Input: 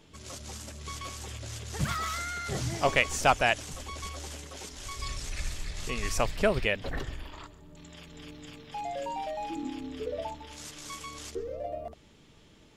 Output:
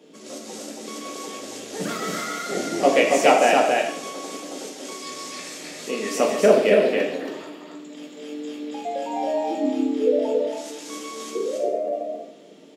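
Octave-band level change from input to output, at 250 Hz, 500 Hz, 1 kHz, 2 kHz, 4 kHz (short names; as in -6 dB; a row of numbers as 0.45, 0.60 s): +12.5, +13.5, +8.0, +4.5, +5.0 dB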